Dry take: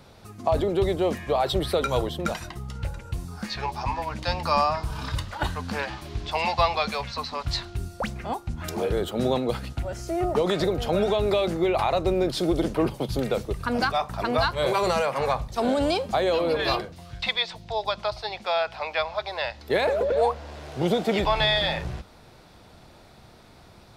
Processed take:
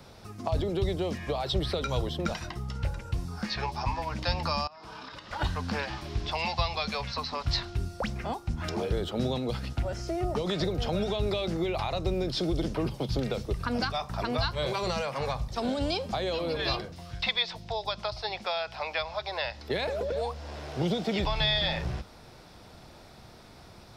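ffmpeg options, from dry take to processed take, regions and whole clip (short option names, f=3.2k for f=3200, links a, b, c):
-filter_complex "[0:a]asettb=1/sr,asplit=3[a][b][c];[a]atrim=end=4.674[d];[b]atrim=start=4.67:end=5.31,asetpts=PTS-STARTPTS,afade=t=in:d=0.004:c=qsin,afade=t=out:st=0.636:d=0.004:c=qsin,acrossover=split=220 5500:gain=0.0631 1 0.141[e][f][g];[e][f][g]amix=inputs=3:normalize=0,acompressor=threshold=-39dB:ratio=16:attack=3.2:release=140:knee=1:detection=peak[h];[c]atrim=start=5.306[i];[d][h]acrossfade=d=0.004:c1=hsin:c2=qsin[j];[j][i]acrossfade=d=0.004:c1=qsin:c2=hsin,acrossover=split=5800[k][l];[l]acompressor=threshold=-59dB:ratio=4:attack=1:release=60[m];[k][m]amix=inputs=2:normalize=0,equalizer=f=5.3k:t=o:w=0.21:g=6,acrossover=split=200|3000[n][o][p];[o]acompressor=threshold=-30dB:ratio=6[q];[n][q][p]amix=inputs=3:normalize=0"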